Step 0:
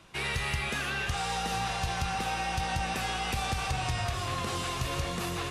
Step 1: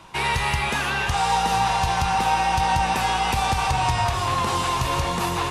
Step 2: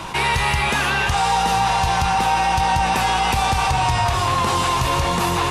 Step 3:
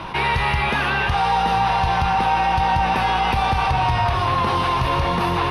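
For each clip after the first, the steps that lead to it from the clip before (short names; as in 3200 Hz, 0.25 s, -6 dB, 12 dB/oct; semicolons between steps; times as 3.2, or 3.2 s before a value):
bell 920 Hz +13.5 dB 0.33 oct; gain +7 dB
fast leveller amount 50%; gain +1.5 dB
running mean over 6 samples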